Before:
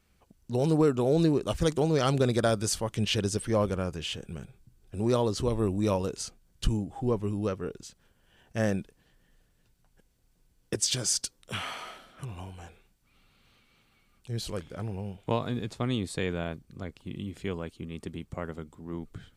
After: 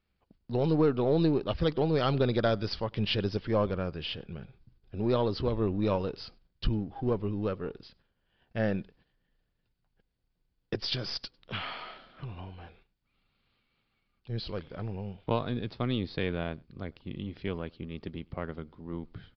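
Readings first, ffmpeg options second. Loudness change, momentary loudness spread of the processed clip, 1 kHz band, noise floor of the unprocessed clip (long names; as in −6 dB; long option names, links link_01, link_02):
−1.5 dB, 16 LU, −1.0 dB, −68 dBFS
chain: -filter_complex "[0:a]aeval=exprs='if(lt(val(0),0),0.708*val(0),val(0))':channel_layout=same,agate=range=-9dB:threshold=-60dB:ratio=16:detection=peak,asplit=2[link_01][link_02];[link_02]adelay=99.13,volume=-28dB,highshelf=frequency=4000:gain=-2.23[link_03];[link_01][link_03]amix=inputs=2:normalize=0,aresample=11025,aresample=44100"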